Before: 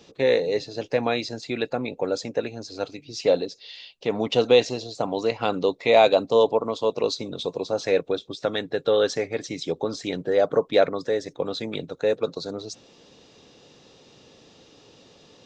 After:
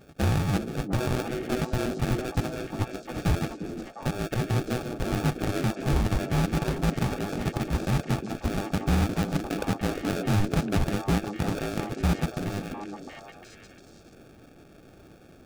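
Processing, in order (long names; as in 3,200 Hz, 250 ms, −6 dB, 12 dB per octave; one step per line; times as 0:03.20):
band-splitting scrambler in four parts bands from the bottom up 2341
0:04.08–0:04.70: high-shelf EQ 3,700 Hz −8 dB
brickwall limiter −14.5 dBFS, peak gain reduction 9.5 dB
sample-rate reduction 1,000 Hz, jitter 0%
echo through a band-pass that steps 353 ms, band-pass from 310 Hz, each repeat 1.4 octaves, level −1 dB
highs frequency-modulated by the lows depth 0.39 ms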